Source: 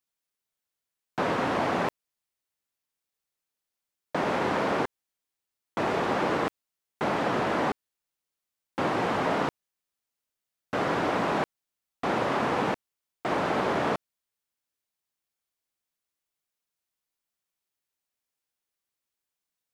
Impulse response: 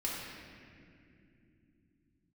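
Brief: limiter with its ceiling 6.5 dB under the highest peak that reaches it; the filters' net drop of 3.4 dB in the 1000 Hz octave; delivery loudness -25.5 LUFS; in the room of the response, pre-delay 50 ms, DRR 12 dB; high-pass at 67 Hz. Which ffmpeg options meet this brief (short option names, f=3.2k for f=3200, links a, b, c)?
-filter_complex "[0:a]highpass=67,equalizer=f=1k:t=o:g=-4.5,alimiter=limit=-22.5dB:level=0:latency=1,asplit=2[a][b];[1:a]atrim=start_sample=2205,adelay=50[c];[b][c]afir=irnorm=-1:irlink=0,volume=-16dB[d];[a][d]amix=inputs=2:normalize=0,volume=7.5dB"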